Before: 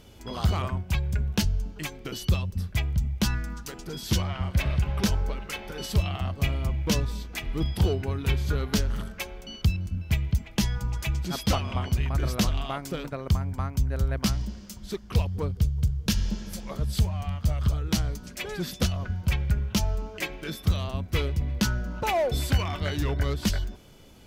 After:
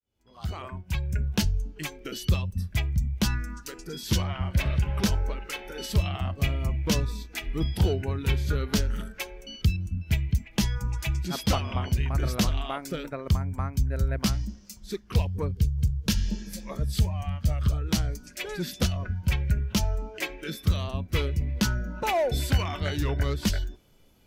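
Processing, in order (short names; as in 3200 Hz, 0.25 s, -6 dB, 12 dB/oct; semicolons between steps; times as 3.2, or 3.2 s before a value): opening faded in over 1.28 s; spectral noise reduction 10 dB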